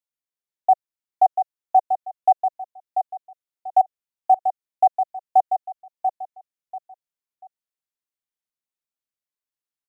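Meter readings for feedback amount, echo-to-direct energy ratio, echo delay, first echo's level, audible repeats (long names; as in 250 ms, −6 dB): 27%, −6.5 dB, 689 ms, −7.0 dB, 3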